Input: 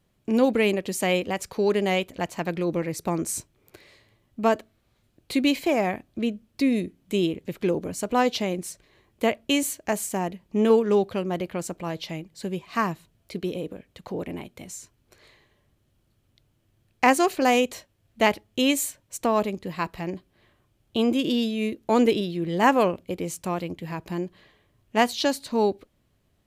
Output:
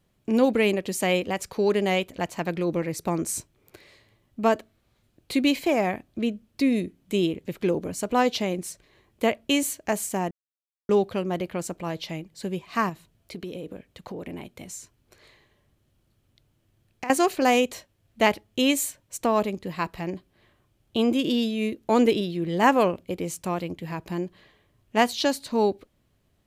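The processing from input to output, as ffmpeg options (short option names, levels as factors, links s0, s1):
-filter_complex "[0:a]asettb=1/sr,asplit=3[s0][s1][s2];[s0]atrim=end=12.894[s3];[s1]atrim=start=12.89:end=17.1,asetpts=PTS-STARTPTS,afade=t=in:d=0.004:c=qsin,afade=t=out:st=4.206:d=0.004:c=qsin,acompressor=threshold=0.0282:ratio=6:attack=3.2:release=140:knee=1:detection=peak[s4];[s2]atrim=start=17.096[s5];[s3][s4]acrossfade=d=0.004:c1=hsin:c2=qsin[s6];[s6][s5]acrossfade=d=0.004:c1=qsin:c2=hsin,asplit=3[s7][s8][s9];[s7]atrim=end=10.31,asetpts=PTS-STARTPTS,afade=t=out:st=10.306:d=0.004:c=hsin[s10];[s8]atrim=start=10.31:end=10.89,asetpts=PTS-STARTPTS,volume=0[s11];[s9]atrim=start=10.89,asetpts=PTS-STARTPTS,afade=t=in:d=0.004:c=hsin[s12];[s10][s11][s12]concat=n=3:v=0:a=1"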